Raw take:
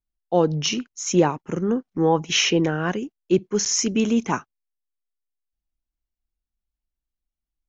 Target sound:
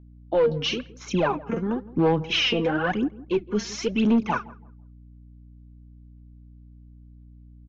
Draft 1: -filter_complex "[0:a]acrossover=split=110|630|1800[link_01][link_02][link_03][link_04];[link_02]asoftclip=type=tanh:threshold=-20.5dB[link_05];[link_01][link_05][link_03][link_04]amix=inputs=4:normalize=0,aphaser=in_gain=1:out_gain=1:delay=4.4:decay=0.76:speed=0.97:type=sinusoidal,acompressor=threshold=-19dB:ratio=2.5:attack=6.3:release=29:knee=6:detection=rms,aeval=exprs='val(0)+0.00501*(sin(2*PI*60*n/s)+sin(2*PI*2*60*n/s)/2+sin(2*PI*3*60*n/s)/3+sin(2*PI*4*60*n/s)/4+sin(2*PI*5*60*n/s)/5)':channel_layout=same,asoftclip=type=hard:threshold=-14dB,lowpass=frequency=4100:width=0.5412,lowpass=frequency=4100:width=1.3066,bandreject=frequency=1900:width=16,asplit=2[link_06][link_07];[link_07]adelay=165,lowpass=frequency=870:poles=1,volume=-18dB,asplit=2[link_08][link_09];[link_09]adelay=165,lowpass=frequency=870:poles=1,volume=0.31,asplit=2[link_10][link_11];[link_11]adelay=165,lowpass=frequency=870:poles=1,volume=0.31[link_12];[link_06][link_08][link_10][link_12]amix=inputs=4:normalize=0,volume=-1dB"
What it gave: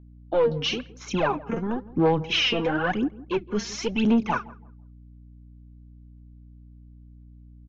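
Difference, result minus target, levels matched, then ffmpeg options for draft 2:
soft clipping: distortion +13 dB
-filter_complex "[0:a]acrossover=split=110|630|1800[link_01][link_02][link_03][link_04];[link_02]asoftclip=type=tanh:threshold=-10dB[link_05];[link_01][link_05][link_03][link_04]amix=inputs=4:normalize=0,aphaser=in_gain=1:out_gain=1:delay=4.4:decay=0.76:speed=0.97:type=sinusoidal,acompressor=threshold=-19dB:ratio=2.5:attack=6.3:release=29:knee=6:detection=rms,aeval=exprs='val(0)+0.00501*(sin(2*PI*60*n/s)+sin(2*PI*2*60*n/s)/2+sin(2*PI*3*60*n/s)/3+sin(2*PI*4*60*n/s)/4+sin(2*PI*5*60*n/s)/5)':channel_layout=same,asoftclip=type=hard:threshold=-14dB,lowpass=frequency=4100:width=0.5412,lowpass=frequency=4100:width=1.3066,bandreject=frequency=1900:width=16,asplit=2[link_06][link_07];[link_07]adelay=165,lowpass=frequency=870:poles=1,volume=-18dB,asplit=2[link_08][link_09];[link_09]adelay=165,lowpass=frequency=870:poles=1,volume=0.31,asplit=2[link_10][link_11];[link_11]adelay=165,lowpass=frequency=870:poles=1,volume=0.31[link_12];[link_06][link_08][link_10][link_12]amix=inputs=4:normalize=0,volume=-1dB"

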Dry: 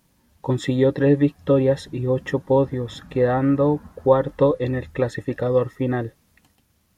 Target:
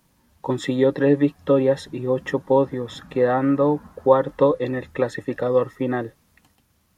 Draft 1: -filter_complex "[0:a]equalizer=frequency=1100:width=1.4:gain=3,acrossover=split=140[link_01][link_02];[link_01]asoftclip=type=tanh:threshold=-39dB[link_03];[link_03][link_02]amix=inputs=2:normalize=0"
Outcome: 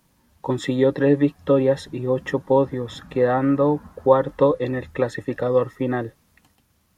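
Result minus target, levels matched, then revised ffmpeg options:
soft clipping: distortion −4 dB
-filter_complex "[0:a]equalizer=frequency=1100:width=1.4:gain=3,acrossover=split=140[link_01][link_02];[link_01]asoftclip=type=tanh:threshold=-48.5dB[link_03];[link_03][link_02]amix=inputs=2:normalize=0"

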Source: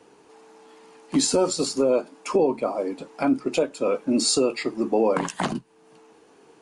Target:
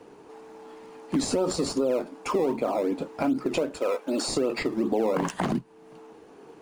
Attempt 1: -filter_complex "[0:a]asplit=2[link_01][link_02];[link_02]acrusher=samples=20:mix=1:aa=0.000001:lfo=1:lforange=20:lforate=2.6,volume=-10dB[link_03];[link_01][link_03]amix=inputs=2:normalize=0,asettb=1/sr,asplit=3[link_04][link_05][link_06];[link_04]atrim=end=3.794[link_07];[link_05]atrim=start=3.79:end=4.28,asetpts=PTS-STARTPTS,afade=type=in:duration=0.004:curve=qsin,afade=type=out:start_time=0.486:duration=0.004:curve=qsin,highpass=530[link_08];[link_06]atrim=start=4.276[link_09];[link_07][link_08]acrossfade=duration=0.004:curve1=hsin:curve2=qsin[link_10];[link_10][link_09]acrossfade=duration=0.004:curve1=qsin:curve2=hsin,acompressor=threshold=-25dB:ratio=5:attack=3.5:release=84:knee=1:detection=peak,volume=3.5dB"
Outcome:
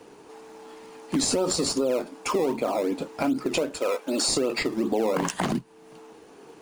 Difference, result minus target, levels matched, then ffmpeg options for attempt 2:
4,000 Hz band +4.5 dB
-filter_complex "[0:a]asplit=2[link_01][link_02];[link_02]acrusher=samples=20:mix=1:aa=0.000001:lfo=1:lforange=20:lforate=2.6,volume=-10dB[link_03];[link_01][link_03]amix=inputs=2:normalize=0,asettb=1/sr,asplit=3[link_04][link_05][link_06];[link_04]atrim=end=3.794[link_07];[link_05]atrim=start=3.79:end=4.28,asetpts=PTS-STARTPTS,afade=type=in:duration=0.004:curve=qsin,afade=type=out:start_time=0.486:duration=0.004:curve=qsin,highpass=530[link_08];[link_06]atrim=start=4.276[link_09];[link_07][link_08]acrossfade=duration=0.004:curve1=hsin:curve2=qsin[link_10];[link_10][link_09]acrossfade=duration=0.004:curve1=qsin:curve2=hsin,acompressor=threshold=-25dB:ratio=5:attack=3.5:release=84:knee=1:detection=peak,highshelf=frequency=2500:gain=-8,volume=3.5dB"

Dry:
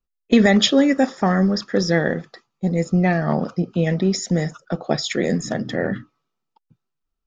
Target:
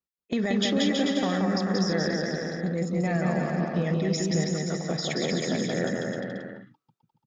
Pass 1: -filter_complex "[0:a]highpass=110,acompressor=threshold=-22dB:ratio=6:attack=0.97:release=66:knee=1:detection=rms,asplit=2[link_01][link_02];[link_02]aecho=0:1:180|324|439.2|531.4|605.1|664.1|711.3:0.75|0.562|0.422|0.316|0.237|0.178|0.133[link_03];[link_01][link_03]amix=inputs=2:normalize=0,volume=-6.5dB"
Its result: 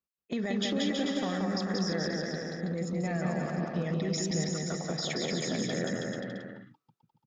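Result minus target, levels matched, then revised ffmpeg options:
downward compressor: peak gain reduction +6 dB
-filter_complex "[0:a]highpass=110,acompressor=threshold=-15dB:ratio=6:attack=0.97:release=66:knee=1:detection=rms,asplit=2[link_01][link_02];[link_02]aecho=0:1:180|324|439.2|531.4|605.1|664.1|711.3:0.75|0.562|0.422|0.316|0.237|0.178|0.133[link_03];[link_01][link_03]amix=inputs=2:normalize=0,volume=-6.5dB"

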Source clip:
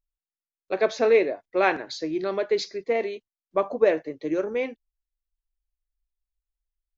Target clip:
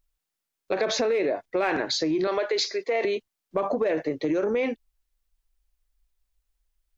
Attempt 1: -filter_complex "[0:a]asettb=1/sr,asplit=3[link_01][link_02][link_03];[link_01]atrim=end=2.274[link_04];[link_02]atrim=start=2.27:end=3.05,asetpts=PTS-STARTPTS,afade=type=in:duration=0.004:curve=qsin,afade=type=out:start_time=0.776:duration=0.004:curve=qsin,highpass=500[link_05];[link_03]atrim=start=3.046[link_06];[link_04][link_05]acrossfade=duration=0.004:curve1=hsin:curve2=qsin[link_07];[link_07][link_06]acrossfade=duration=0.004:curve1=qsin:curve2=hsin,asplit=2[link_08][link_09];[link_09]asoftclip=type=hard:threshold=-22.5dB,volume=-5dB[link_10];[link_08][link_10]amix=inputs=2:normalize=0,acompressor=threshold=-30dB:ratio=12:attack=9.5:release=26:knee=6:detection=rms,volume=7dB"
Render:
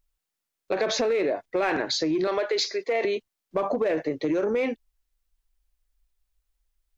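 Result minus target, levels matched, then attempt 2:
hard clipping: distortion +9 dB
-filter_complex "[0:a]asettb=1/sr,asplit=3[link_01][link_02][link_03];[link_01]atrim=end=2.274[link_04];[link_02]atrim=start=2.27:end=3.05,asetpts=PTS-STARTPTS,afade=type=in:duration=0.004:curve=qsin,afade=type=out:start_time=0.776:duration=0.004:curve=qsin,highpass=500[link_05];[link_03]atrim=start=3.046[link_06];[link_04][link_05]acrossfade=duration=0.004:curve1=hsin:curve2=qsin[link_07];[link_07][link_06]acrossfade=duration=0.004:curve1=qsin:curve2=hsin,asplit=2[link_08][link_09];[link_09]asoftclip=type=hard:threshold=-14.5dB,volume=-5dB[link_10];[link_08][link_10]amix=inputs=2:normalize=0,acompressor=threshold=-30dB:ratio=12:attack=9.5:release=26:knee=6:detection=rms,volume=7dB"

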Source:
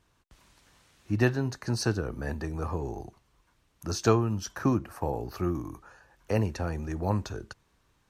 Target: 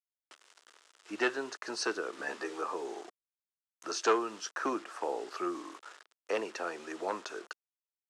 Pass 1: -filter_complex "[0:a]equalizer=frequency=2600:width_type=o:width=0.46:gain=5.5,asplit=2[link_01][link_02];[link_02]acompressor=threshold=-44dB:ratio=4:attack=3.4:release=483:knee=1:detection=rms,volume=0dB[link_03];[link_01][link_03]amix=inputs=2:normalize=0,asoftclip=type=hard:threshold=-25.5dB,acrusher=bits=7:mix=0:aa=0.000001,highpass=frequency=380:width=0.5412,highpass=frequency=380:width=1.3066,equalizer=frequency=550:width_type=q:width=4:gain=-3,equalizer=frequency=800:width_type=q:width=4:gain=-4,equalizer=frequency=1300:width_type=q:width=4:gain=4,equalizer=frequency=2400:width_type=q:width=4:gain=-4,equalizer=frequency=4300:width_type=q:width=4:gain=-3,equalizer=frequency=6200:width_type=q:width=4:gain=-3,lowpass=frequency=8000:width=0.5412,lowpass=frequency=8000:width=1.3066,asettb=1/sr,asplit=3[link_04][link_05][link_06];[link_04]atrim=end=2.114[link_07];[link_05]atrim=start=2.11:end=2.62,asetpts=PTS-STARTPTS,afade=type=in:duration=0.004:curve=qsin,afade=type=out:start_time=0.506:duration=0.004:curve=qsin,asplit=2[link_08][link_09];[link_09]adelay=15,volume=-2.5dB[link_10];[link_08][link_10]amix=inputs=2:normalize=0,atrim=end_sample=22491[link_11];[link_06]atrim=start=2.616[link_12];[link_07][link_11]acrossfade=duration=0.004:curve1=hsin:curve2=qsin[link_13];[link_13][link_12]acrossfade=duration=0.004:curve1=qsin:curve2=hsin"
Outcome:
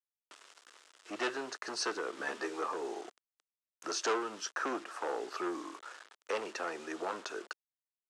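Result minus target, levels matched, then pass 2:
downward compressor: peak gain reduction −8.5 dB; hard clipping: distortion +10 dB
-filter_complex "[0:a]equalizer=frequency=2600:width_type=o:width=0.46:gain=5.5,asplit=2[link_01][link_02];[link_02]acompressor=threshold=-55dB:ratio=4:attack=3.4:release=483:knee=1:detection=rms,volume=0dB[link_03];[link_01][link_03]amix=inputs=2:normalize=0,asoftclip=type=hard:threshold=-16.5dB,acrusher=bits=7:mix=0:aa=0.000001,highpass=frequency=380:width=0.5412,highpass=frequency=380:width=1.3066,equalizer=frequency=550:width_type=q:width=4:gain=-3,equalizer=frequency=800:width_type=q:width=4:gain=-4,equalizer=frequency=1300:width_type=q:width=4:gain=4,equalizer=frequency=2400:width_type=q:width=4:gain=-4,equalizer=frequency=4300:width_type=q:width=4:gain=-3,equalizer=frequency=6200:width_type=q:width=4:gain=-3,lowpass=frequency=8000:width=0.5412,lowpass=frequency=8000:width=1.3066,asettb=1/sr,asplit=3[link_04][link_05][link_06];[link_04]atrim=end=2.114[link_07];[link_05]atrim=start=2.11:end=2.62,asetpts=PTS-STARTPTS,afade=type=in:duration=0.004:curve=qsin,afade=type=out:start_time=0.506:duration=0.004:curve=qsin,asplit=2[link_08][link_09];[link_09]adelay=15,volume=-2.5dB[link_10];[link_08][link_10]amix=inputs=2:normalize=0,atrim=end_sample=22491[link_11];[link_06]atrim=start=2.616[link_12];[link_07][link_11]acrossfade=duration=0.004:curve1=hsin:curve2=qsin[link_13];[link_13][link_12]acrossfade=duration=0.004:curve1=qsin:curve2=hsin"

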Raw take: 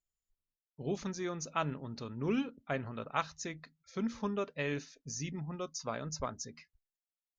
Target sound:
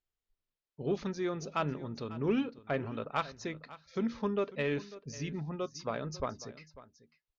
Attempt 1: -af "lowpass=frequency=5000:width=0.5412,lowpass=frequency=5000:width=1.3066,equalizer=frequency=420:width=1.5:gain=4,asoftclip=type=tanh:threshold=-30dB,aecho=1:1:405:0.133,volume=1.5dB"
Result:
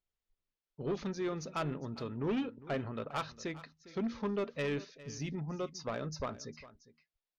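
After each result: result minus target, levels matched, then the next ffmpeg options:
soft clipping: distortion +12 dB; echo 141 ms early
-af "lowpass=frequency=5000:width=0.5412,lowpass=frequency=5000:width=1.3066,equalizer=frequency=420:width=1.5:gain=4,asoftclip=type=tanh:threshold=-20.5dB,aecho=1:1:405:0.133,volume=1.5dB"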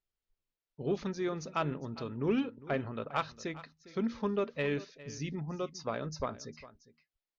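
echo 141 ms early
-af "lowpass=frequency=5000:width=0.5412,lowpass=frequency=5000:width=1.3066,equalizer=frequency=420:width=1.5:gain=4,asoftclip=type=tanh:threshold=-20.5dB,aecho=1:1:546:0.133,volume=1.5dB"

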